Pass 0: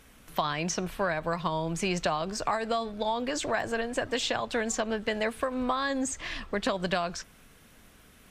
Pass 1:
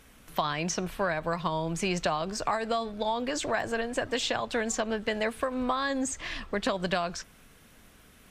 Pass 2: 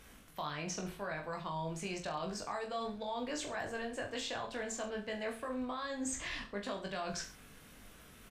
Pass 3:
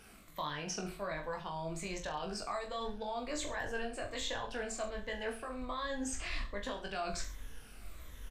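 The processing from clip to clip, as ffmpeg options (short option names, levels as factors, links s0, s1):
-af anull
-af "areverse,acompressor=threshold=0.0158:ratio=6,areverse,aecho=1:1:20|43|69.45|99.87|134.8:0.631|0.398|0.251|0.158|0.1,volume=0.75"
-af "afftfilt=real='re*pow(10,8/40*sin(2*PI*(1.1*log(max(b,1)*sr/1024/100)/log(2)-(-1.3)*(pts-256)/sr)))':imag='im*pow(10,8/40*sin(2*PI*(1.1*log(max(b,1)*sr/1024/100)/log(2)-(-1.3)*(pts-256)/sr)))':win_size=1024:overlap=0.75,asubboost=boost=8:cutoff=55"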